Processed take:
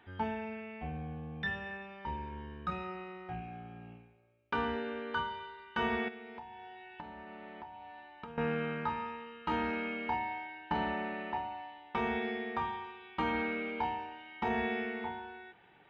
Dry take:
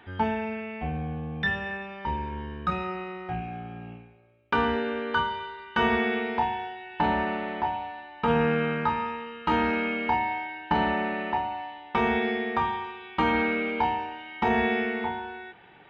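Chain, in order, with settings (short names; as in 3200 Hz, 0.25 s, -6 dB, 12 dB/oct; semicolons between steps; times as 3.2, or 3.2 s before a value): 6.08–8.38 compressor 16:1, threshold -35 dBFS, peak gain reduction 17 dB; gain -9 dB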